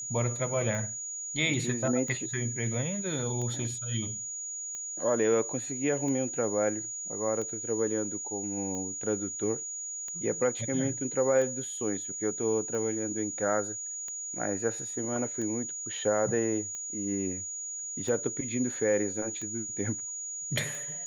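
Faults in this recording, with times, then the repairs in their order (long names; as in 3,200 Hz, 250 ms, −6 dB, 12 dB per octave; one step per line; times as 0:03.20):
scratch tick 45 rpm −26 dBFS
whistle 6,800 Hz −35 dBFS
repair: click removal
notch filter 6,800 Hz, Q 30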